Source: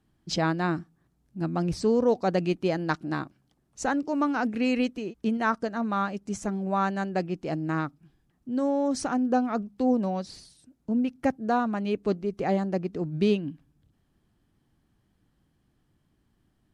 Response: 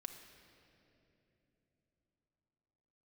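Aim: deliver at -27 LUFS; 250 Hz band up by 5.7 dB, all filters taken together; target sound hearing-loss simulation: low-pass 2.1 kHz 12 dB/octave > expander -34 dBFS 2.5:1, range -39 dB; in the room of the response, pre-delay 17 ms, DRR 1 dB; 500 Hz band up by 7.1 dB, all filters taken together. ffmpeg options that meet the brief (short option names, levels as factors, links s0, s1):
-filter_complex "[0:a]equalizer=f=250:t=o:g=5,equalizer=f=500:t=o:g=7,asplit=2[s0][s1];[1:a]atrim=start_sample=2205,adelay=17[s2];[s1][s2]afir=irnorm=-1:irlink=0,volume=1.41[s3];[s0][s3]amix=inputs=2:normalize=0,lowpass=2100,agate=range=0.0112:threshold=0.02:ratio=2.5,volume=0.422"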